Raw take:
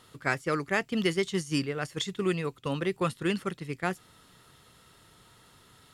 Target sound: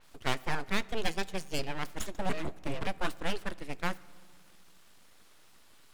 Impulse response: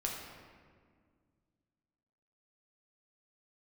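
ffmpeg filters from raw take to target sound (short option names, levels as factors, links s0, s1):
-filter_complex "[0:a]asettb=1/sr,asplit=3[s0][s1][s2];[s0]atrim=end=1.084[s3];[s1]atrim=start=1.08:end=1.59,asetpts=PTS-STARTPTS,afade=t=in:d=0.004:c=qsin,afade=t=out:st=0.506:d=0.004:c=qsin,aeval=exprs='0.178*(cos(1*acos(clip(val(0)/0.178,-1,1)))-cos(1*PI/2))+0.0398*(cos(3*acos(clip(val(0)/0.178,-1,1)))-cos(3*PI/2))+0.0158*(cos(8*acos(clip(val(0)/0.178,-1,1)))-cos(8*PI/2))':c=same[s4];[s2]atrim=start=1.586[s5];[s3][s4]acrossfade=d=0.004:c1=hsin:c2=qsin[s6];[s6][s5]acrossfade=d=0.004:c1=qsin:c2=hsin,asettb=1/sr,asplit=3[s7][s8][s9];[s7]atrim=end=2.294[s10];[s8]atrim=start=2.29:end=2.87,asetpts=PTS-STARTPTS,afade=t=in:d=0.004:c=qsin,afade=t=out:st=0.576:d=0.004:c=qsin,afreqshift=-480[s11];[s9]atrim=start=2.866[s12];[s10][s11]acrossfade=d=0.004:c1=hsin:c2=qsin[s13];[s13][s12]acrossfade=d=0.004:c1=qsin:c2=hsin,aeval=exprs='abs(val(0))':c=same,asplit=2[s14][s15];[1:a]atrim=start_sample=2205[s16];[s15][s16]afir=irnorm=-1:irlink=0,volume=0.112[s17];[s14][s17]amix=inputs=2:normalize=0,adynamicequalizer=threshold=0.00501:dfrequency=4600:dqfactor=0.7:tfrequency=4600:tqfactor=0.7:attack=5:release=100:ratio=0.375:range=1.5:mode=cutabove:tftype=highshelf,volume=0.794"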